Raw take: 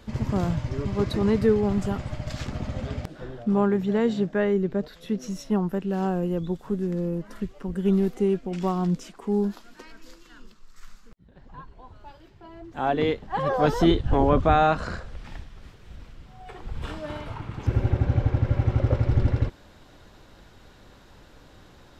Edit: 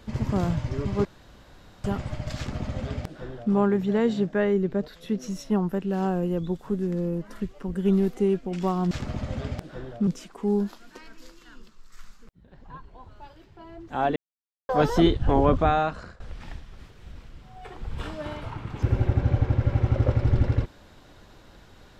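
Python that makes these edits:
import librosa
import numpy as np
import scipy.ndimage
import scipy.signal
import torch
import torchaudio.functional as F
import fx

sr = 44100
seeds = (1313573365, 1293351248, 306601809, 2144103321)

y = fx.edit(x, sr, fx.room_tone_fill(start_s=1.05, length_s=0.79),
    fx.duplicate(start_s=2.37, length_s=1.16, to_s=8.91),
    fx.silence(start_s=13.0, length_s=0.53),
    fx.fade_out_to(start_s=14.34, length_s=0.7, floor_db=-18.0), tone=tone)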